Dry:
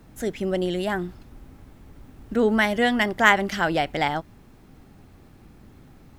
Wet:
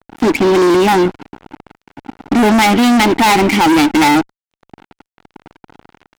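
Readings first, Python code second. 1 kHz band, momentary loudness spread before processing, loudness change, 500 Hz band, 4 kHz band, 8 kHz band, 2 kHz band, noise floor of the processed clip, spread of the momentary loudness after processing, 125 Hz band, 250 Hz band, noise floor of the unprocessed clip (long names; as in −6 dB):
+12.5 dB, 12 LU, +11.5 dB, +10.5 dB, +11.5 dB, +17.0 dB, +6.0 dB, below −85 dBFS, 6 LU, +10.0 dB, +15.0 dB, −51 dBFS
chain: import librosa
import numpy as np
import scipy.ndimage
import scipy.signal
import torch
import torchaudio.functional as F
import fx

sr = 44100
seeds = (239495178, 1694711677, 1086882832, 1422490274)

y = fx.vowel_filter(x, sr, vowel='u')
y = fx.vibrato(y, sr, rate_hz=4.0, depth_cents=25.0)
y = fx.fuzz(y, sr, gain_db=47.0, gate_db=-55.0)
y = y * 10.0 ** (4.5 / 20.0)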